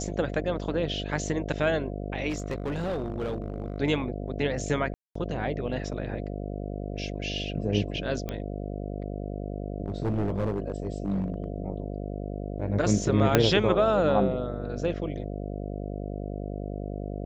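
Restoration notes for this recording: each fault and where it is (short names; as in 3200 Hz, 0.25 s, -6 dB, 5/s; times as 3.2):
buzz 50 Hz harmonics 14 -34 dBFS
2.29–3.78 clipped -26 dBFS
4.94–5.15 gap 0.214 s
8.29 pop -19 dBFS
9.86–11.44 clipped -23.5 dBFS
13.35 pop -4 dBFS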